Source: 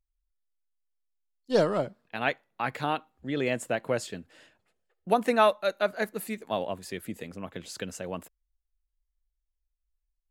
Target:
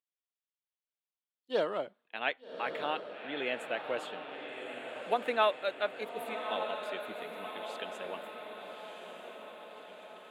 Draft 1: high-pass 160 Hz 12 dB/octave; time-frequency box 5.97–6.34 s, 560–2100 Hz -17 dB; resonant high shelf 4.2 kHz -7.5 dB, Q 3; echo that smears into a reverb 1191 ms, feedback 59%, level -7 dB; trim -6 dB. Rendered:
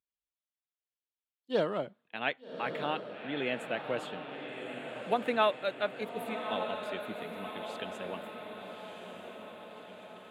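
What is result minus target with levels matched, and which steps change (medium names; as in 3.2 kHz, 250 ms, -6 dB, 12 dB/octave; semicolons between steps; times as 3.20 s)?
125 Hz band +10.0 dB
change: high-pass 360 Hz 12 dB/octave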